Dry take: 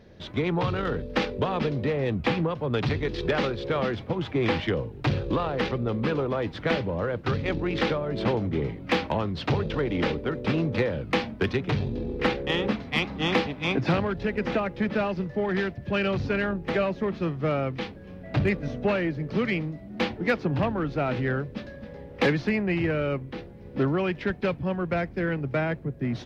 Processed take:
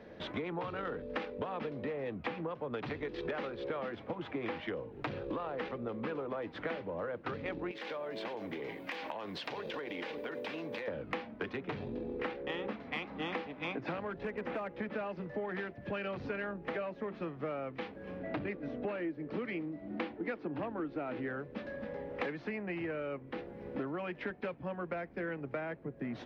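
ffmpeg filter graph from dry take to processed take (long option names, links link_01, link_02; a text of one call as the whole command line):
ffmpeg -i in.wav -filter_complex "[0:a]asettb=1/sr,asplit=3[link_01][link_02][link_03];[link_01]atrim=end=7.714[link_04];[link_02]atrim=start=7.71:end=10.88,asetpts=PTS-STARTPTS,afade=type=in:duration=0.004:curve=qsin,afade=type=out:start_time=3.166:duration=0.004:curve=qsin,aemphasis=mode=production:type=riaa,bandreject=frequency=1300:width=8.6,acompressor=threshold=-34dB:ratio=12:attack=3.2:release=140:knee=1:detection=peak[link_05];[link_03]atrim=start=10.876[link_06];[link_04][link_05]acrossfade=duration=0.004:curve1=hsin:curve2=qsin[link_07];[link_07][link_06]acrossfade=duration=0.004:curve1=qsin:curve2=hsin,asettb=1/sr,asplit=3[link_08][link_09][link_10];[link_08]atrim=end=14.154[link_11];[link_09]atrim=start=14.15:end=14.79,asetpts=PTS-STARTPTS,afade=type=in:duration=0.004:curve=qsin,afade=type=out:start_time=0.636:duration=0.004:curve=qsin,acrossover=split=3200[link_12][link_13];[link_13]acompressor=threshold=-52dB:ratio=4:attack=1:release=60[link_14];[link_12][link_14]amix=inputs=2:normalize=0,volume=22dB,asoftclip=hard,volume=-22dB[link_15];[link_10]atrim=start=14.786[link_16];[link_11][link_15]acrossfade=duration=0.004:curve1=hsin:curve2=qsin[link_17];[link_17][link_16]acrossfade=duration=0.004:curve1=qsin:curve2=hsin,asettb=1/sr,asplit=3[link_18][link_19][link_20];[link_18]atrim=end=18.194[link_21];[link_19]atrim=start=18.19:end=21.28,asetpts=PTS-STARTPTS,afade=type=in:duration=0.004:curve=qsin,afade=type=out:start_time=3.086:duration=0.004:curve=qsin,lowpass=frequency=5700:width=0.5412,lowpass=frequency=5700:width=1.3066,equalizer=frequency=320:width=2.9:gain=8[link_22];[link_20]atrim=start=21.276[link_23];[link_21][link_22]acrossfade=duration=0.004:curve1=hsin:curve2=qsin[link_24];[link_24][link_23]acrossfade=duration=0.004:curve1=qsin:curve2=hsin,acrossover=split=230 2800:gain=0.2 1 0.224[link_25][link_26][link_27];[link_25][link_26][link_27]amix=inputs=3:normalize=0,bandreject=frequency=380:width=12,acompressor=threshold=-41dB:ratio=5,volume=4dB" out.wav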